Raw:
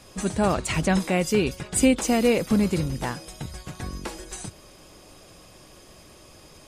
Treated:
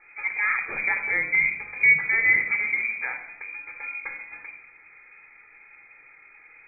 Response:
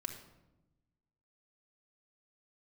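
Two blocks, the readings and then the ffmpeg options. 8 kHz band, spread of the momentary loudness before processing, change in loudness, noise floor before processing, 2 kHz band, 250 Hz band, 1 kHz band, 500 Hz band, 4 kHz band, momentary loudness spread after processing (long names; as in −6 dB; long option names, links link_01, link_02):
below −40 dB, 16 LU, +2.0 dB, −50 dBFS, +13.5 dB, below −25 dB, −7.0 dB, −20.5 dB, below −40 dB, 18 LU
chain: -filter_complex "[0:a]lowpass=frequency=2100:width_type=q:width=0.5098,lowpass=frequency=2100:width_type=q:width=0.6013,lowpass=frequency=2100:width_type=q:width=0.9,lowpass=frequency=2100:width_type=q:width=2.563,afreqshift=-2500[link_01];[1:a]atrim=start_sample=2205,asetrate=57330,aresample=44100[link_02];[link_01][link_02]afir=irnorm=-1:irlink=0,crystalizer=i=3:c=0"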